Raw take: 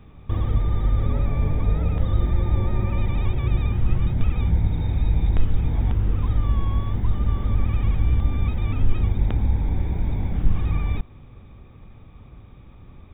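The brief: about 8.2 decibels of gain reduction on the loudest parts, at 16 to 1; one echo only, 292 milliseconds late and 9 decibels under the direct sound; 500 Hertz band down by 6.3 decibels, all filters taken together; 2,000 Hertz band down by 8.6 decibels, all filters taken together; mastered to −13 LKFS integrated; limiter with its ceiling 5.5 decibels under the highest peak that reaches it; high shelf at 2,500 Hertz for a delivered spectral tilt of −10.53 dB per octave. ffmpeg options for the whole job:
ffmpeg -i in.wav -af "equalizer=frequency=500:width_type=o:gain=-8,equalizer=frequency=2000:width_type=o:gain=-7,highshelf=frequency=2500:gain=-6.5,acompressor=threshold=-18dB:ratio=16,alimiter=limit=-18dB:level=0:latency=1,aecho=1:1:292:0.355,volume=15dB" out.wav

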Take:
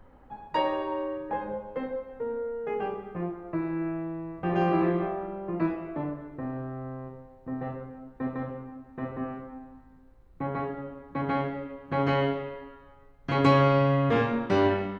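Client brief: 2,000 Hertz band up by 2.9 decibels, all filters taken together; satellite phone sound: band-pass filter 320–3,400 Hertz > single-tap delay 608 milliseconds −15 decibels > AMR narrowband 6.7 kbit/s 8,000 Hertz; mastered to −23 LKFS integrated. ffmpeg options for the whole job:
ffmpeg -i in.wav -af "highpass=320,lowpass=3400,equalizer=frequency=2000:width_type=o:gain=4,aecho=1:1:608:0.178,volume=9dB" -ar 8000 -c:a libopencore_amrnb -b:a 6700 out.amr

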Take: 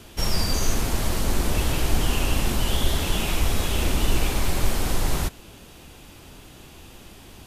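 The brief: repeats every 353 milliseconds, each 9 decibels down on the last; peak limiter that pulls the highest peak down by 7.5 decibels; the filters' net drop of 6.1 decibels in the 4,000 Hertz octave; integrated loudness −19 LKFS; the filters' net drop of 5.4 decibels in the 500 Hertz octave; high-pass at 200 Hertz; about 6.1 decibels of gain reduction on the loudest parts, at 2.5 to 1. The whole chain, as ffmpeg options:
ffmpeg -i in.wav -af "highpass=200,equalizer=frequency=500:width_type=o:gain=-7,equalizer=frequency=4000:width_type=o:gain=-8.5,acompressor=threshold=-37dB:ratio=2.5,alimiter=level_in=7.5dB:limit=-24dB:level=0:latency=1,volume=-7.5dB,aecho=1:1:353|706|1059|1412:0.355|0.124|0.0435|0.0152,volume=21.5dB" out.wav

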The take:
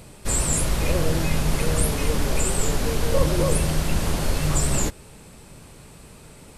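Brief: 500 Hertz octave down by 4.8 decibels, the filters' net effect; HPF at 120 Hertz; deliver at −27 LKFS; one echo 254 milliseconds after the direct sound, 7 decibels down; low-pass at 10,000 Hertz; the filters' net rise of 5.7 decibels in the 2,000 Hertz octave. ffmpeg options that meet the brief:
ffmpeg -i in.wav -af "highpass=120,lowpass=10000,equalizer=frequency=500:width_type=o:gain=-6,equalizer=frequency=2000:width_type=o:gain=7.5,aecho=1:1:254:0.447,volume=-2.5dB" out.wav

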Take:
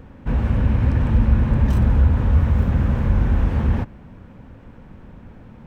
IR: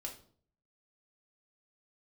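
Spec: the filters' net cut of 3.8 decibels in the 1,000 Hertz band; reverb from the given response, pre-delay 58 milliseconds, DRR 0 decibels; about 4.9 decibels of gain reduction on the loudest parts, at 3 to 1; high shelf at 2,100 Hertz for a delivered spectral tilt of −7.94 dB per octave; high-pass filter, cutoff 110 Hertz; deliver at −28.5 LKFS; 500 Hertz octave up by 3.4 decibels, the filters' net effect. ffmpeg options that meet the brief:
-filter_complex "[0:a]highpass=110,equalizer=frequency=500:width_type=o:gain=5.5,equalizer=frequency=1000:width_type=o:gain=-7.5,highshelf=frequency=2100:gain=4,acompressor=threshold=-24dB:ratio=3,asplit=2[link_01][link_02];[1:a]atrim=start_sample=2205,adelay=58[link_03];[link_02][link_03]afir=irnorm=-1:irlink=0,volume=2dB[link_04];[link_01][link_04]amix=inputs=2:normalize=0,volume=-3.5dB"

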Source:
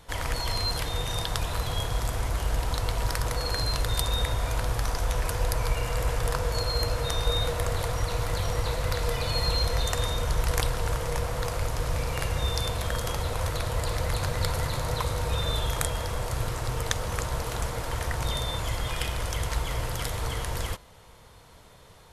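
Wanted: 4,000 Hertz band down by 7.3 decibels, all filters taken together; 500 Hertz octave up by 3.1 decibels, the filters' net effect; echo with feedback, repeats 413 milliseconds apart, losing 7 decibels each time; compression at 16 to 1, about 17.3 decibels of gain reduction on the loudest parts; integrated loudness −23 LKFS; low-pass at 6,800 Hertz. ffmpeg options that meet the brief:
ffmpeg -i in.wav -af "lowpass=6800,equalizer=frequency=500:width_type=o:gain=3.5,equalizer=frequency=4000:width_type=o:gain=-8,acompressor=threshold=-38dB:ratio=16,aecho=1:1:413|826|1239|1652|2065:0.447|0.201|0.0905|0.0407|0.0183,volume=20dB" out.wav

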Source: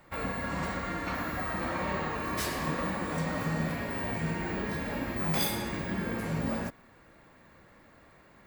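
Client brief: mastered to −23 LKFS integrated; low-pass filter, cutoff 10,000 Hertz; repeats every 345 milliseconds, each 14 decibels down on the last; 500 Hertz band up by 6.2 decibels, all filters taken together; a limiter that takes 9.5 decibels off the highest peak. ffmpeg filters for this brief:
ffmpeg -i in.wav -af "lowpass=10000,equalizer=frequency=500:width_type=o:gain=7.5,alimiter=level_in=1dB:limit=-24dB:level=0:latency=1,volume=-1dB,aecho=1:1:345|690:0.2|0.0399,volume=11dB" out.wav

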